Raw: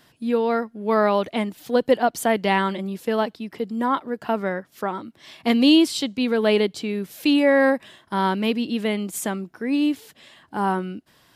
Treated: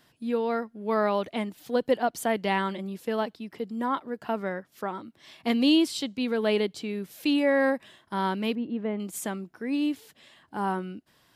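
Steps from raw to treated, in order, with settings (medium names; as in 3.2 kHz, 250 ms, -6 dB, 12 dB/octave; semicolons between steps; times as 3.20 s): 8.55–9.00 s: low-pass 1.3 kHz 12 dB/octave; trim -6 dB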